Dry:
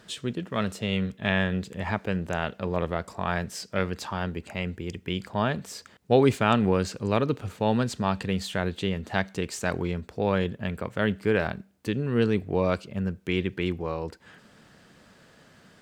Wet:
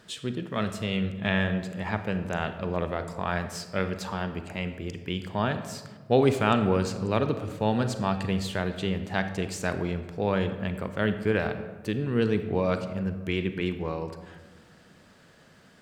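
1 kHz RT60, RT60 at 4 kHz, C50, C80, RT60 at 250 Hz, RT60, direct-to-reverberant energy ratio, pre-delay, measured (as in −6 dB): 1.3 s, 0.75 s, 10.0 dB, 12.0 dB, 1.8 s, 1.4 s, 9.0 dB, 33 ms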